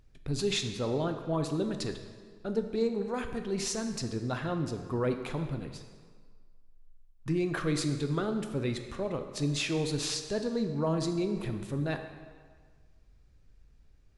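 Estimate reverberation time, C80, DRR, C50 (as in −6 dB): 1.6 s, 9.0 dB, 6.0 dB, 8.0 dB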